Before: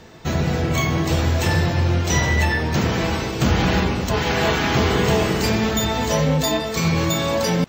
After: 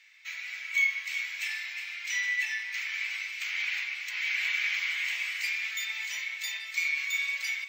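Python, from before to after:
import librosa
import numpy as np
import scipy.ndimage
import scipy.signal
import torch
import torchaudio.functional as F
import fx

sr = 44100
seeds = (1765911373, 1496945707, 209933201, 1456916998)

y = fx.ladder_highpass(x, sr, hz=2100.0, resonance_pct=80)
y = y + 10.0 ** (-10.5 / 20.0) * np.pad(y, (int(364 * sr / 1000.0), 0))[:len(y)]
y = F.gain(torch.from_numpy(y), -1.5).numpy()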